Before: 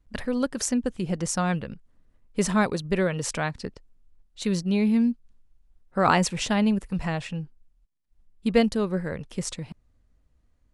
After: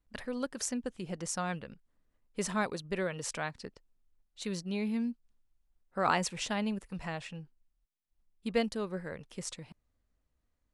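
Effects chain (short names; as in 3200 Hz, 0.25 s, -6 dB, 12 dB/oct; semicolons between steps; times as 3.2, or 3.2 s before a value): low shelf 280 Hz -7.5 dB; gain -7 dB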